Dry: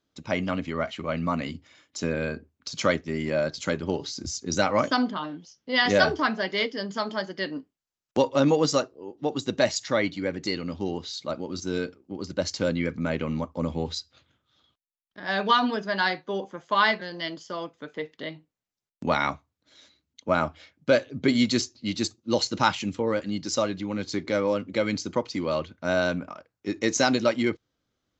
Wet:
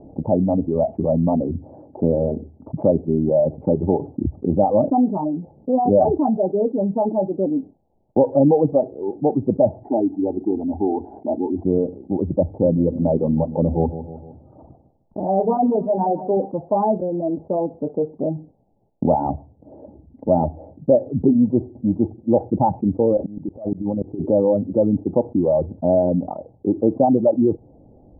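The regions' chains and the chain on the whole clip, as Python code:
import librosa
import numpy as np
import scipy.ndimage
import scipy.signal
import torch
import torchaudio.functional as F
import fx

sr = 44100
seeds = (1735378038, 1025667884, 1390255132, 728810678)

y = fx.chain(x, sr, fx.cvsd(bps=64000),
    fx.highpass(hz=130.0, slope=12),
    fx.fixed_phaser(hz=790.0, stages=8), at=(9.83, 11.65))
y = fx.chain(y, sr, fx.hum_notches(base_hz=50, count=6),
    fx.echo_feedback(ms=153, feedback_pct=30, wet_db=-13.0), at=(12.45, 16.37))
y = fx.chain(y, sr, fx.over_compress(threshold_db=-33.0, ratio=-0.5),
    fx.auto_swell(attack_ms=247.0), at=(23.17, 24.2))
y = scipy.signal.sosfilt(scipy.signal.cheby1(6, 1.0, 840.0, 'lowpass', fs=sr, output='sos'), y)
y = fx.dereverb_blind(y, sr, rt60_s=1.0)
y = fx.env_flatten(y, sr, amount_pct=50)
y = y * librosa.db_to_amplitude(5.5)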